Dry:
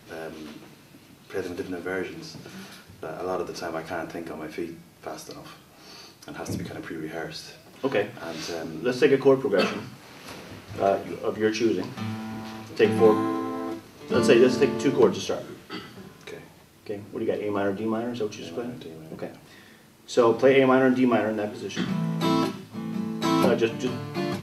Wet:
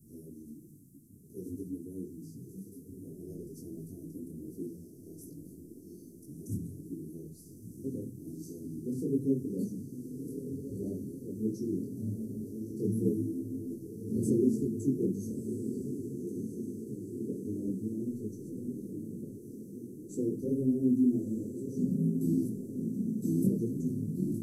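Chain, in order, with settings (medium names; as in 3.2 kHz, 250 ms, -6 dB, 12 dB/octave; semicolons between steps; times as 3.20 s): inverse Chebyshev band-stop 820–3300 Hz, stop band 60 dB; echo that smears into a reverb 1296 ms, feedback 62%, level -7.5 dB; detune thickener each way 45 cents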